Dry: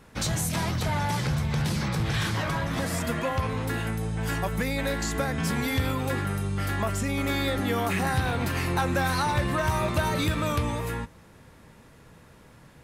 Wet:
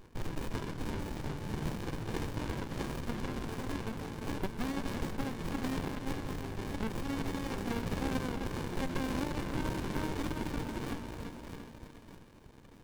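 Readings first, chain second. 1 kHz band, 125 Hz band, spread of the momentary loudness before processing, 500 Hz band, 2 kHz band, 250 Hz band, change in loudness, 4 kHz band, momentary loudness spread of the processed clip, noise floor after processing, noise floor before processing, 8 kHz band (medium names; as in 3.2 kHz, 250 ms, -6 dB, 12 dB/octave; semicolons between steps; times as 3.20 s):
-12.0 dB, -12.0 dB, 4 LU, -9.5 dB, -13.0 dB, -6.5 dB, -10.5 dB, -12.0 dB, 10 LU, -55 dBFS, -53 dBFS, -14.5 dB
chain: high-pass 1.1 kHz 6 dB/octave; reverb removal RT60 1.6 s; in parallel at 0 dB: compression, threshold -42 dBFS, peak gain reduction 15.5 dB; on the sum: wavefolder -21 dBFS; two-band feedback delay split 2.1 kHz, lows 348 ms, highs 629 ms, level -5 dB; sliding maximum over 65 samples; trim +1 dB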